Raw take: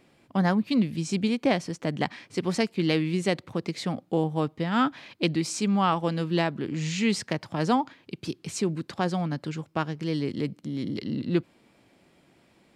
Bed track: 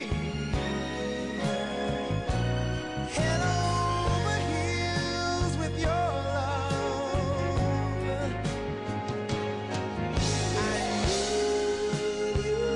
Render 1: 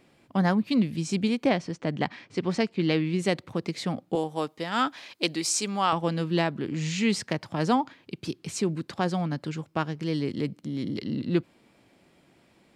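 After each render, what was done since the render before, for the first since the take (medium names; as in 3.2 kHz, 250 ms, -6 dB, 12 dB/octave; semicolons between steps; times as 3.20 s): 1.49–3.19 s: distance through air 79 m; 4.15–5.93 s: tone controls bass -13 dB, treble +8 dB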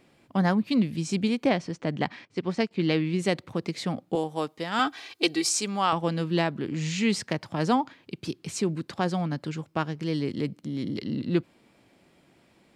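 2.25–2.71 s: upward expansion, over -45 dBFS; 4.79–5.49 s: comb 2.6 ms, depth 80%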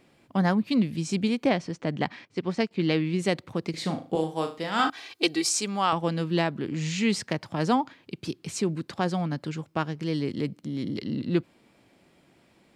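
3.70–4.90 s: flutter echo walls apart 6.4 m, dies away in 0.33 s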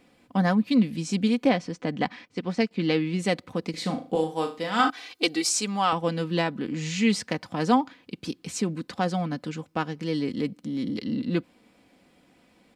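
comb 4 ms, depth 47%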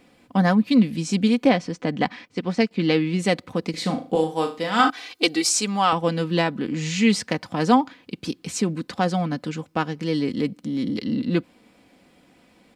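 trim +4 dB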